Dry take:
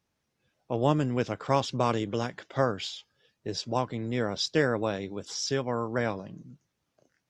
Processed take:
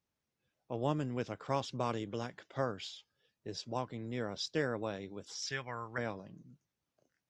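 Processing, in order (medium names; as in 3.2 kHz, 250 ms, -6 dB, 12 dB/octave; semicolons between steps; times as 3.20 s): 5.42–5.98 s: ten-band graphic EQ 250 Hz -9 dB, 500 Hz -6 dB, 2 kHz +11 dB; trim -9 dB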